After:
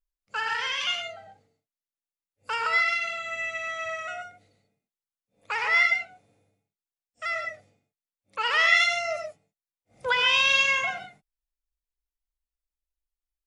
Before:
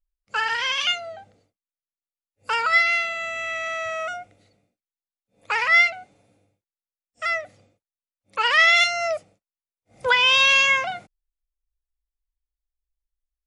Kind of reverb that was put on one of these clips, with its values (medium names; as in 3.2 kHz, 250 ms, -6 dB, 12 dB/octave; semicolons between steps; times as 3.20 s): gated-style reverb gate 160 ms rising, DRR 4 dB; trim -6 dB